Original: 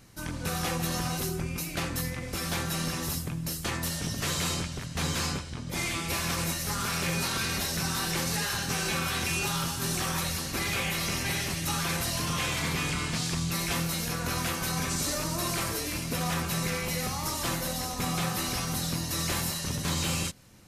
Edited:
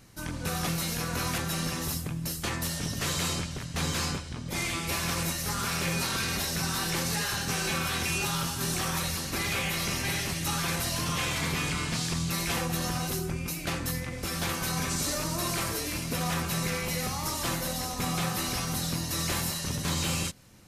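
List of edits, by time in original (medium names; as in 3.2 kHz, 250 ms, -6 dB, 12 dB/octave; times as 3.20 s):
0.67–2.59 s: swap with 13.78–14.49 s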